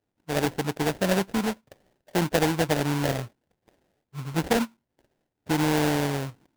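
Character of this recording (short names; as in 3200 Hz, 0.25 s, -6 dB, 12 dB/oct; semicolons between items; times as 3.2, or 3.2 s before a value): aliases and images of a low sample rate 1200 Hz, jitter 20%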